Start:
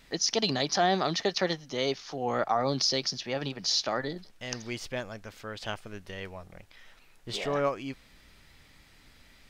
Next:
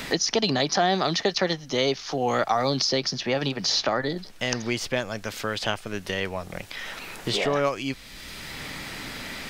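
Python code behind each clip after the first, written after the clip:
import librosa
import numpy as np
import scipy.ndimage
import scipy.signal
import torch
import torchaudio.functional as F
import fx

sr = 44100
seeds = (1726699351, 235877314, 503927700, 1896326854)

y = fx.band_squash(x, sr, depth_pct=70)
y = F.gain(torch.from_numpy(y), 5.5).numpy()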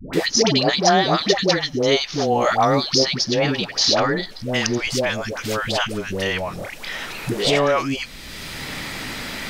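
y = fx.dispersion(x, sr, late='highs', ms=135.0, hz=620.0)
y = F.gain(torch.from_numpy(y), 6.0).numpy()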